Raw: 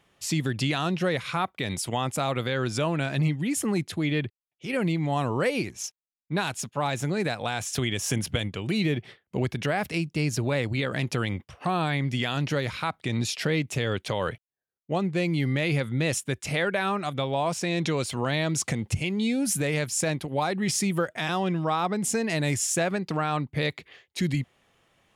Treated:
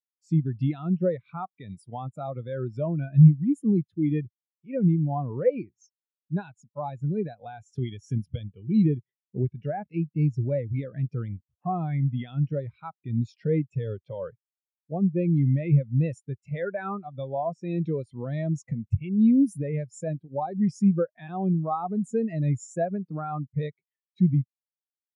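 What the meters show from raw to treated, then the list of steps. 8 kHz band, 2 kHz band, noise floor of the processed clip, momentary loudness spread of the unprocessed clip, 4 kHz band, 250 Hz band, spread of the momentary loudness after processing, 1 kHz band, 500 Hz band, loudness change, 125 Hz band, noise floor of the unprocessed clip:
below −20 dB, −16.5 dB, below −85 dBFS, 5 LU, below −20 dB, +3.0 dB, 14 LU, −5.0 dB, −2.0 dB, +0.5 dB, +3.5 dB, −84 dBFS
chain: every bin expanded away from the loudest bin 2.5 to 1
level +8.5 dB

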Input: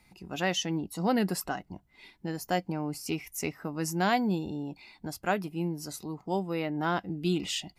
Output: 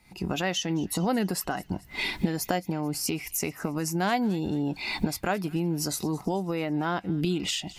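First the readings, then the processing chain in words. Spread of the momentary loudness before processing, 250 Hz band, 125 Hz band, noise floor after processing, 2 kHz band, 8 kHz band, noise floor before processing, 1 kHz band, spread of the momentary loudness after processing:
11 LU, +3.5 dB, +4.0 dB, −51 dBFS, +2.5 dB, +6.0 dB, −65 dBFS, +0.5 dB, 4 LU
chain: camcorder AGC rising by 65 dB per second
delay with a high-pass on its return 219 ms, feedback 50%, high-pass 1,700 Hz, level −19.5 dB

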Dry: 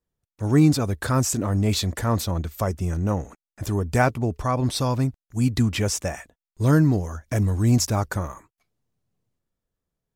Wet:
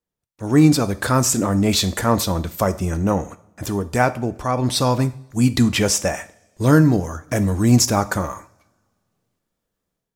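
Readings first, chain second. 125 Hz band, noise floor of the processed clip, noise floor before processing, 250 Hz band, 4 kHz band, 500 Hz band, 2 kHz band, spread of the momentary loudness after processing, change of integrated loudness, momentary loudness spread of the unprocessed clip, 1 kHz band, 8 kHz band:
+1.5 dB, −81 dBFS, below −85 dBFS, +5.0 dB, +7.0 dB, +5.5 dB, +5.0 dB, 11 LU, +4.0 dB, 10 LU, +5.5 dB, +7.0 dB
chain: low-shelf EQ 87 Hz −11.5 dB
automatic gain control gain up to 9 dB
coupled-rooms reverb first 0.46 s, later 1.7 s, from −22 dB, DRR 11.5 dB
level −1 dB

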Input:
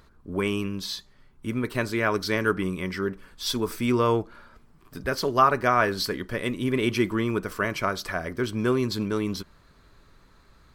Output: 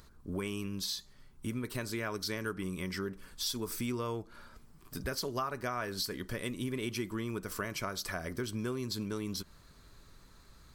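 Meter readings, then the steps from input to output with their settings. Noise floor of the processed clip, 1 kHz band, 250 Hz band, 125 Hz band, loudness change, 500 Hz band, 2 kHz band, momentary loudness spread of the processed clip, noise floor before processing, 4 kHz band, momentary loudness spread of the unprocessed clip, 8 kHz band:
−59 dBFS, −15.0 dB, −10.5 dB, −9.0 dB, −11.0 dB, −12.5 dB, −12.0 dB, 6 LU, −57 dBFS, −6.0 dB, 11 LU, −2.0 dB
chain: bass and treble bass +3 dB, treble +10 dB
downward compressor 4 to 1, threshold −30 dBFS, peak gain reduction 14 dB
level −4 dB

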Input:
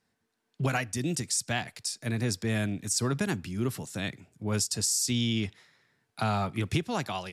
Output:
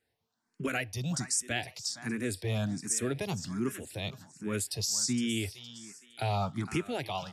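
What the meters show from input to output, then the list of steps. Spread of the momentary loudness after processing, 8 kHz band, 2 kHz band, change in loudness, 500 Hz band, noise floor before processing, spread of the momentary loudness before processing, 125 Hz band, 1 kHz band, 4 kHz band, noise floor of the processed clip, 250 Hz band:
10 LU, −2.5 dB, −2.5 dB, −3.0 dB, −1.5 dB, −79 dBFS, 9 LU, −4.5 dB, −3.5 dB, −3.0 dB, −82 dBFS, −2.5 dB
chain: on a send: feedback echo with a high-pass in the loop 463 ms, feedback 34%, high-pass 450 Hz, level −12.5 dB
on the sum: frequency shifter mixed with the dry sound +1.3 Hz

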